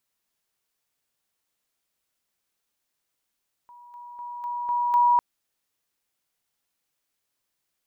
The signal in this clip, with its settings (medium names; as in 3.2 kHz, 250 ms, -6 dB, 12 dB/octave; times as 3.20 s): level ladder 965 Hz -45.5 dBFS, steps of 6 dB, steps 6, 0.25 s 0.00 s